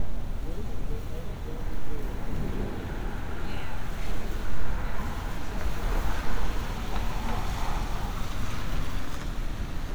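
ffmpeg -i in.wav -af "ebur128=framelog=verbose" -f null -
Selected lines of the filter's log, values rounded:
Integrated loudness:
  I:         -35.0 LUFS
  Threshold: -45.0 LUFS
Loudness range:
  LRA:         2.8 LU
  Threshold: -54.7 LUFS
  LRA low:   -36.3 LUFS
  LRA high:  -33.5 LUFS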